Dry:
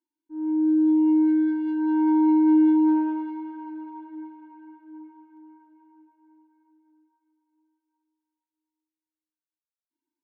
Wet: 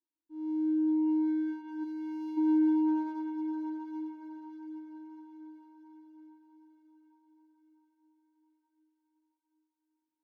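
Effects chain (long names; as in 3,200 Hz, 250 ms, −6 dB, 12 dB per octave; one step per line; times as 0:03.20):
running median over 15 samples
gain on a spectral selection 0:01.84–0:02.38, 200–1,600 Hz −13 dB
feedback delay with all-pass diffusion 731 ms, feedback 55%, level −10 dB
level −8.5 dB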